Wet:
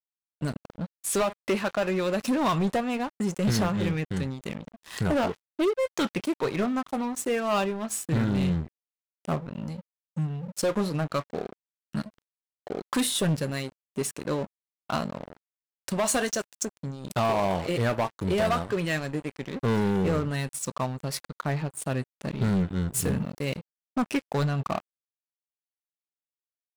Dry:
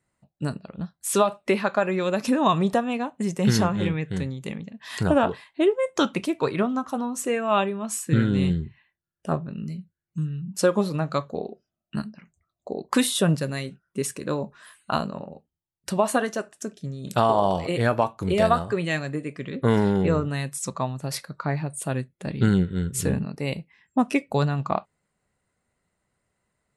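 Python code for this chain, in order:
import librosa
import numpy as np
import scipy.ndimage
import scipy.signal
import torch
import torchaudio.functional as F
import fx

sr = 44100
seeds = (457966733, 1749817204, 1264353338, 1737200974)

y = fx.peak_eq(x, sr, hz=6400.0, db=12.5, octaves=1.6, at=(15.98, 16.65))
y = np.sign(y) * np.maximum(np.abs(y) - 10.0 ** (-37.5 / 20.0), 0.0)
y = fx.high_shelf(y, sr, hz=11000.0, db=9.5, at=(22.88, 23.45))
y = 10.0 ** (-22.5 / 20.0) * np.tanh(y / 10.0 ** (-22.5 / 20.0))
y = y * librosa.db_to_amplitude(2.5)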